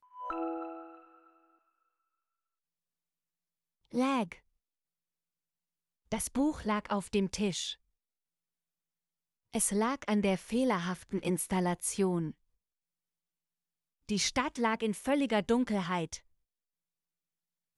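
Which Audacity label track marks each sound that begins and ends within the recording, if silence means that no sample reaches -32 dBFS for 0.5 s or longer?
3.940000	4.320000	sound
6.120000	7.700000	sound
9.540000	12.290000	sound
14.090000	16.150000	sound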